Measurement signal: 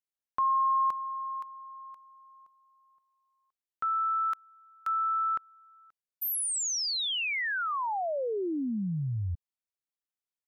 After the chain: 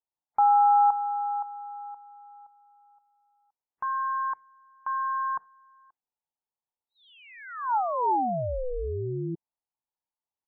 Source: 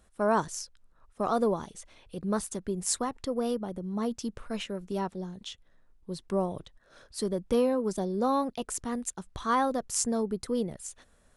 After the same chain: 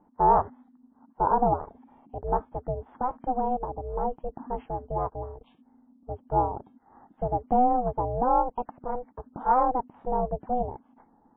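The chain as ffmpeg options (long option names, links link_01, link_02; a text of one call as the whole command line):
ffmpeg -i in.wav -af "aeval=exprs='val(0)*sin(2*PI*250*n/s)':channel_layout=same,lowpass=frequency=890:width_type=q:width=4.9,lowshelf=frequency=330:gain=4" -ar 8000 -c:a libmp3lame -b:a 16k out.mp3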